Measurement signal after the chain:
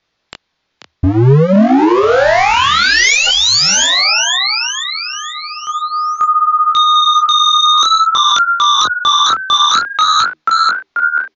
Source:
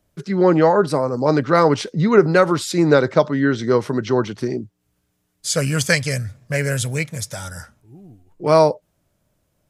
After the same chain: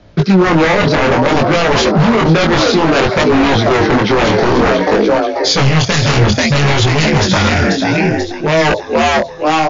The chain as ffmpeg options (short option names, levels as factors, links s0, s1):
-filter_complex "[0:a]lowpass=f=4800:w=0.5412,lowpass=f=4800:w=1.3066,bandreject=f=2900:w=22,asplit=6[s0][s1][s2][s3][s4][s5];[s1]adelay=487,afreqshift=77,volume=0.266[s6];[s2]adelay=974,afreqshift=154,volume=0.136[s7];[s3]adelay=1461,afreqshift=231,volume=0.0692[s8];[s4]adelay=1948,afreqshift=308,volume=0.0355[s9];[s5]adelay=2435,afreqshift=385,volume=0.018[s10];[s0][s6][s7][s8][s9][s10]amix=inputs=6:normalize=0,areverse,acompressor=threshold=0.0631:ratio=12,areverse,aeval=exprs='0.0422*(abs(mod(val(0)/0.0422+3,4)-2)-1)':c=same,flanger=delay=18.5:depth=7.6:speed=0.58,acrossover=split=440|3000[s11][s12][s13];[s12]acompressor=threshold=0.0141:ratio=4[s14];[s11][s14][s13]amix=inputs=3:normalize=0,alimiter=level_in=28.2:limit=0.891:release=50:level=0:latency=1,volume=0.891" -ar 16000 -c:a libmp3lame -b:a 160k